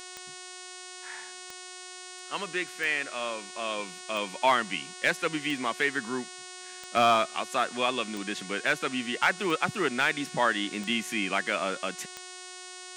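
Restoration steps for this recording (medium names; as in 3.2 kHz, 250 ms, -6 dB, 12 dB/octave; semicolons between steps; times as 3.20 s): clip repair -13.5 dBFS; de-click; de-hum 365.9 Hz, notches 26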